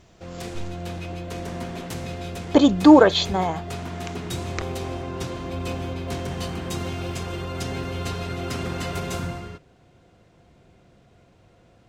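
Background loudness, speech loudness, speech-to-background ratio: −31.5 LKFS, −16.5 LKFS, 15.0 dB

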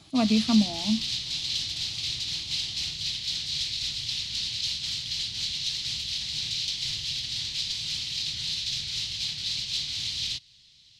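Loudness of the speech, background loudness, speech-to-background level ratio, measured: −25.5 LKFS, −28.5 LKFS, 3.0 dB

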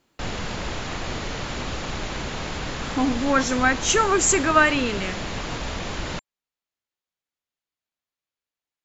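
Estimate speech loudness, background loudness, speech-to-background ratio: −21.0 LKFS, −30.5 LKFS, 9.5 dB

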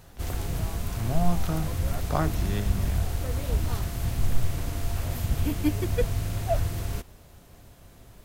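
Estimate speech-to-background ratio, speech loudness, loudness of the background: −2.0 dB, −32.0 LKFS, −30.0 LKFS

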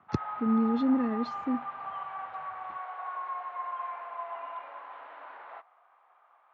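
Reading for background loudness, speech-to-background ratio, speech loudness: −38.5 LKFS, 9.0 dB, −29.5 LKFS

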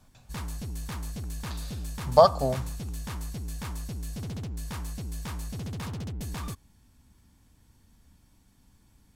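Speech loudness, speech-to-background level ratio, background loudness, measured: −23.0 LKFS, 14.0 dB, −37.0 LKFS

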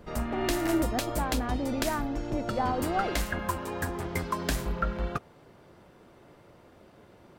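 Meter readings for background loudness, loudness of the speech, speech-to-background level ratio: −32.5 LKFS, −32.0 LKFS, 0.5 dB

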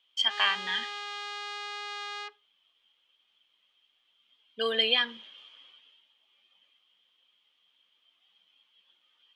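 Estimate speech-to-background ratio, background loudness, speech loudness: 10.0 dB, −37.5 LKFS, −27.5 LKFS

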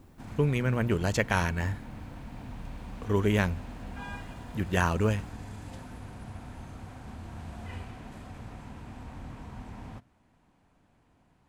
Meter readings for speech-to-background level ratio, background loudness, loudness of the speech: 15.0 dB, −43.5 LKFS, −28.5 LKFS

